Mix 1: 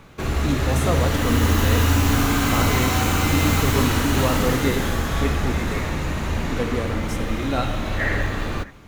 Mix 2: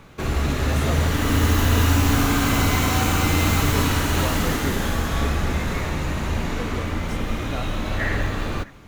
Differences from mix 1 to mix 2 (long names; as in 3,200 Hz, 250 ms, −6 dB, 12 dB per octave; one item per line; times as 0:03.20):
speech −3.5 dB
reverb: off